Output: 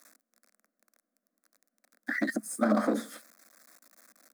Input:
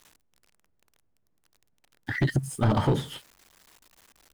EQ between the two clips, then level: elliptic high-pass 210 Hz, stop band 40 dB; fixed phaser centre 600 Hz, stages 8; +3.0 dB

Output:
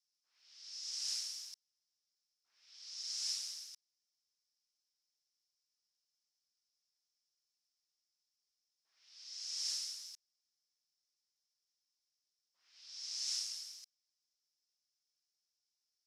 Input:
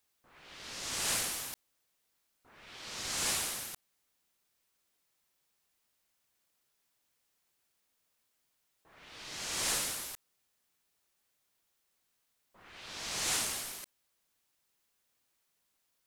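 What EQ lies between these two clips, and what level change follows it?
band-pass 5300 Hz, Q 7.8; +4.0 dB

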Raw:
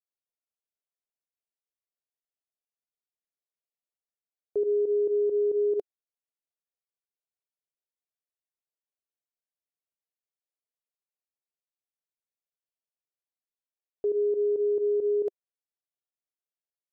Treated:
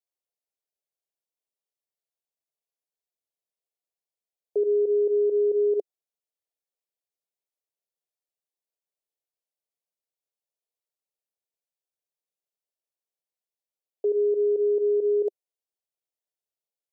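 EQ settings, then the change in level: HPF 180 Hz; bell 250 Hz +6.5 dB 2.8 oct; fixed phaser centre 590 Hz, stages 4; 0.0 dB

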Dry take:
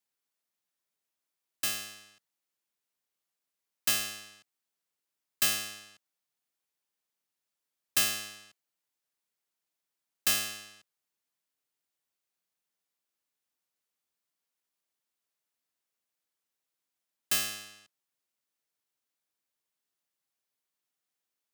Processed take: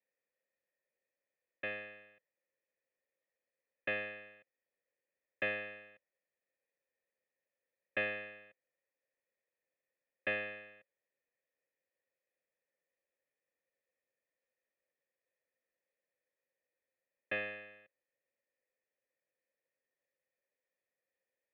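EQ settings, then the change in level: vocal tract filter e; +14.5 dB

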